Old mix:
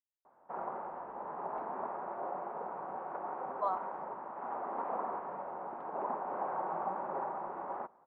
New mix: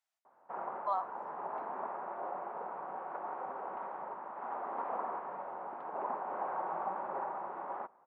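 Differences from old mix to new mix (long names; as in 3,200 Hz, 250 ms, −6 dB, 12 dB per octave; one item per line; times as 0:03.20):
speech: entry −2.75 s
master: add spectral tilt +2 dB per octave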